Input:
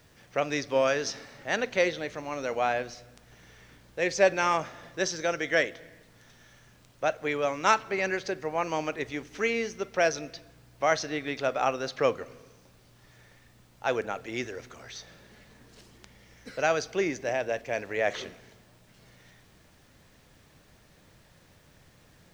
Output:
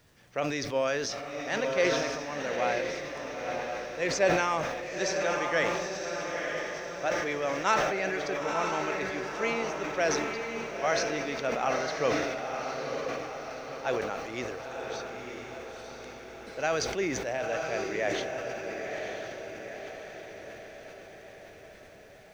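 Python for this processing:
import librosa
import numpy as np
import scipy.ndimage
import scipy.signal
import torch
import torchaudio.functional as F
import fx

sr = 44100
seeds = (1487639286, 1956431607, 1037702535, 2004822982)

y = fx.echo_diffused(x, sr, ms=970, feedback_pct=56, wet_db=-3.5)
y = fx.sustainer(y, sr, db_per_s=35.0)
y = F.gain(torch.from_numpy(y), -4.0).numpy()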